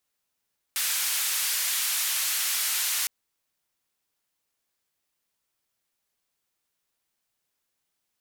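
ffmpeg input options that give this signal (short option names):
-f lavfi -i "anoisesrc=c=white:d=2.31:r=44100:seed=1,highpass=f=1500,lowpass=f=15000,volume=-20dB"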